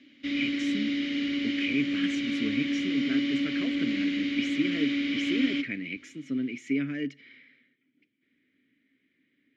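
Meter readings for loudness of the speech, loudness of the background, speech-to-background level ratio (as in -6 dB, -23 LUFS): -33.5 LUFS, -29.0 LUFS, -4.5 dB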